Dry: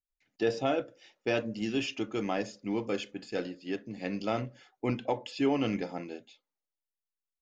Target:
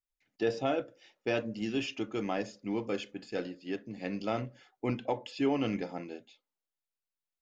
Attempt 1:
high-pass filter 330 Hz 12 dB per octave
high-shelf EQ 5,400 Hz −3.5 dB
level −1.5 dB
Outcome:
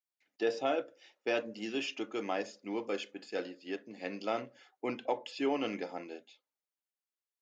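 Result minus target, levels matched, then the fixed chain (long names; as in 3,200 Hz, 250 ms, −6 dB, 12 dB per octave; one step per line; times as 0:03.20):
250 Hz band −3.0 dB
high-shelf EQ 5,400 Hz −3.5 dB
level −1.5 dB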